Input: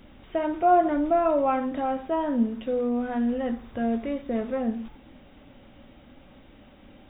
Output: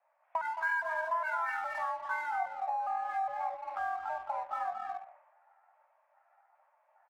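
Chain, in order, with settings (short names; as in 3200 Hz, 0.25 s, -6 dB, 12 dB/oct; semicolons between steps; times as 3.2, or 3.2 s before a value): trilling pitch shifter +10.5 st, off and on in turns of 0.409 s; on a send: loudspeakers at several distances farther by 75 m -8 dB, 92 m -10 dB; on the sum: mistuned SSB +330 Hz 360–2000 Hz; tilt -3.5 dB/oct; in parallel at -4 dB: crossover distortion -40.5 dBFS; on the sum: compressor 4:1, threshold -34 dBFS, peak gain reduction 17 dB; three-band expander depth 70%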